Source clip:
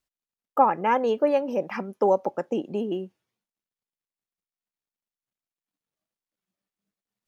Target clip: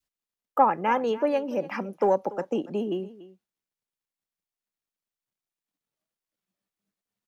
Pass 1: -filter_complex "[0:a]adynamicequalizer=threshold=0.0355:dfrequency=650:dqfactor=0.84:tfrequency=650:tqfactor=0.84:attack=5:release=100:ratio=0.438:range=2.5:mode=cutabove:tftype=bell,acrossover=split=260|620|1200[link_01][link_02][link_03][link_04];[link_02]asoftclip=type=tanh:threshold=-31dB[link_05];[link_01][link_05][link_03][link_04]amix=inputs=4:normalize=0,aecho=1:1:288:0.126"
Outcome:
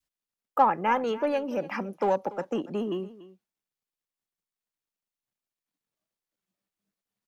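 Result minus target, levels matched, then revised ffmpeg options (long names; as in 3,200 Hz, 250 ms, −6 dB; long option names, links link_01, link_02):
soft clipping: distortion +12 dB
-filter_complex "[0:a]adynamicequalizer=threshold=0.0355:dfrequency=650:dqfactor=0.84:tfrequency=650:tqfactor=0.84:attack=5:release=100:ratio=0.438:range=2.5:mode=cutabove:tftype=bell,acrossover=split=260|620|1200[link_01][link_02][link_03][link_04];[link_02]asoftclip=type=tanh:threshold=-19dB[link_05];[link_01][link_05][link_03][link_04]amix=inputs=4:normalize=0,aecho=1:1:288:0.126"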